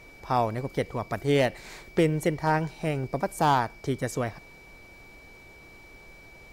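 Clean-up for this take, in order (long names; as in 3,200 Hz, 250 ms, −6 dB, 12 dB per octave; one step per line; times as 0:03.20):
clipped peaks rebuilt −14 dBFS
notch filter 2,300 Hz, Q 30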